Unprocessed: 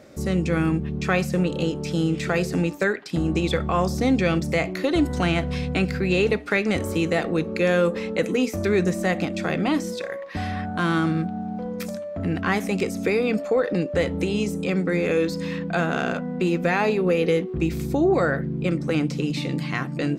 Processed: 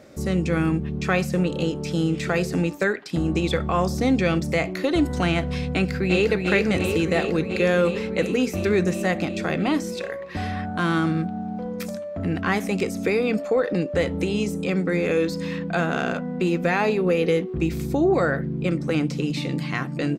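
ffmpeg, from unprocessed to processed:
-filter_complex "[0:a]asplit=2[a][b];[b]afade=t=in:st=5.73:d=0.01,afade=t=out:st=6.3:d=0.01,aecho=0:1:350|700|1050|1400|1750|2100|2450|2800|3150|3500|3850|4200:0.595662|0.47653|0.381224|0.304979|0.243983|0.195187|0.156149|0.124919|0.0999355|0.0799484|0.0639587|0.051167[c];[a][c]amix=inputs=2:normalize=0"

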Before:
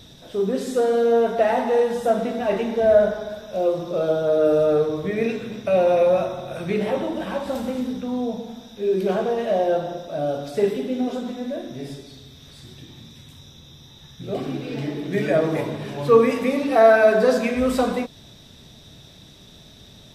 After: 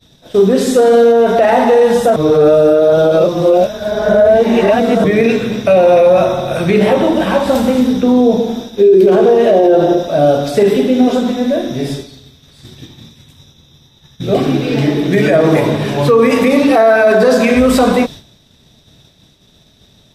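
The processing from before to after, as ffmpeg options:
-filter_complex "[0:a]asettb=1/sr,asplit=3[a][b][c];[a]atrim=end=8.034[d];[b]atrim=start=8.03:end=10.03,asetpts=PTS-STARTPTS,afade=t=in:d=0.004:c=qsin,afade=t=out:st=1.996:d=0.004:c=qsin,equalizer=f=370:w=2.2:g=11.5[e];[c]atrim=start=10.026[f];[d][e]acrossfade=d=0.004:c1=hsin:c2=qsin[g];[g][f]acrossfade=d=0.004:c1=qsin:c2=hsin,asplit=3[h][i][j];[h]atrim=end=2.162[k];[i]atrim=start=2.158:end=5.042,asetpts=PTS-STARTPTS,areverse[l];[j]atrim=start=5.038[m];[k][l]acrossfade=d=0.004:c1=hsin:c2=hsin[n];[n][m]acrossfade=d=0.004:c1=hsin:c2=hsin,agate=range=-33dB:threshold=-35dB:ratio=3:detection=peak,alimiter=level_in=15.5dB:limit=-1dB:release=50:level=0:latency=1,volume=-1dB"

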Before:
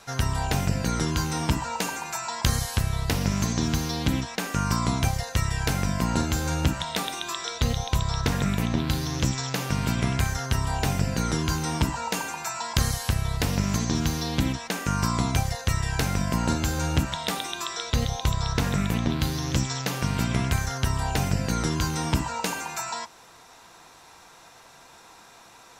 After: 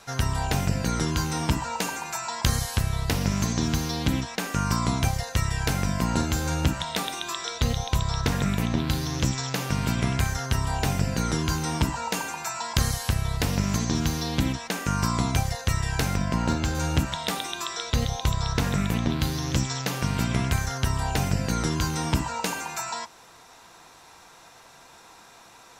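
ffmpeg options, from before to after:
-filter_complex "[0:a]asettb=1/sr,asplit=3[a][b][c];[a]atrim=end=16.164[d];[b]atrim=start=16.16:end=16.75,asetpts=PTS-STARTPTS,afade=t=in:d=0.004:c=qsin,afade=t=out:st=0.586:d=0.004:c=qsin,adynamicsmooth=sensitivity=4.5:basefreq=5.6k[e];[c]atrim=start=16.746[f];[d][e]acrossfade=d=0.004:c1=hsin:c2=qsin[g];[g][f]acrossfade=d=0.004:c1=qsin:c2=hsin"

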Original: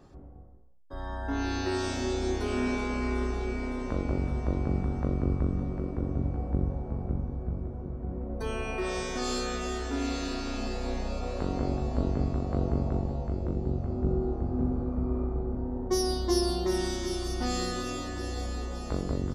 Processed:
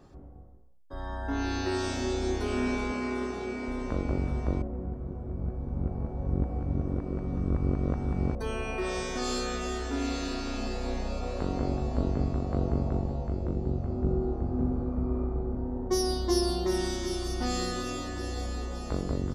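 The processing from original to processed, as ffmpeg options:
-filter_complex "[0:a]asettb=1/sr,asplit=3[a][b][c];[a]atrim=end=2.924[d];[b]atrim=start=2.92:end=3.68,asetpts=PTS-STARTPTS,afade=t=in:d=0.004:c=qsin,afade=t=out:st=0.756:d=0.004:c=qsin,highpass=130[e];[c]atrim=start=3.676[f];[d][e]acrossfade=d=0.004:c1=hsin:c2=qsin[g];[g][f]acrossfade=d=0.004:c1=qsin:c2=hsin,asplit=3[h][i][j];[h]atrim=end=4.622[k];[i]atrim=start=4.618:end=8.352,asetpts=PTS-STARTPTS,areverse[l];[j]atrim=start=8.348[m];[k][l]acrossfade=d=0.004:c1=hsin:c2=hsin[n];[n][m]acrossfade=d=0.004:c1=hsin:c2=hsin"

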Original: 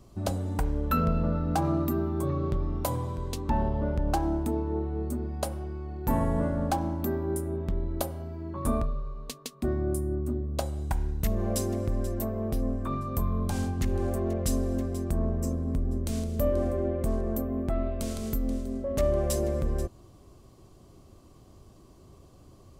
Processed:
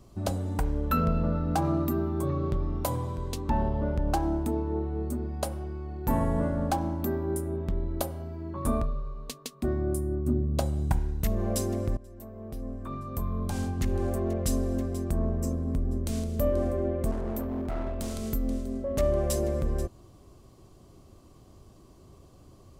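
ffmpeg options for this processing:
-filter_complex "[0:a]asettb=1/sr,asplit=3[a][b][c];[a]atrim=end=10.264[d];[b]atrim=start=10.26:end=10.99,asetpts=PTS-STARTPTS,afade=t=in:d=0.004:c=qsin,afade=t=out:st=0.726:d=0.004:c=qsin,equalizer=f=150:w=0.68:g=8[e];[c]atrim=start=10.986[f];[d][e]acrossfade=d=0.004:c1=hsin:c2=qsin[g];[g][f]acrossfade=d=0.004:c1=qsin:c2=hsin,asettb=1/sr,asplit=3[h][i][j];[h]atrim=end=17.114[k];[i]atrim=start=17.11:end=18.13,asetpts=PTS-STARTPTS,afade=t=in:d=0.004:c=qsin,afade=t=out:st=1.016:d=0.004:c=qsin,volume=28dB,asoftclip=hard,volume=-28dB[l];[j]atrim=start=18.126[m];[k][l]acrossfade=d=0.004:c1=hsin:c2=qsin[n];[n][m]acrossfade=d=0.004:c1=qsin:c2=hsin,asplit=2[o][p];[o]atrim=end=11.97,asetpts=PTS-STARTPTS,afade=t=out:st=11.966:d=0.004:c=hsin:silence=0.0891251[q];[p]atrim=start=11.97,asetpts=PTS-STARTPTS,afade=t=in:d=1.91:silence=0.0891251[r];[q][r]concat=n=2:v=0:a=1"

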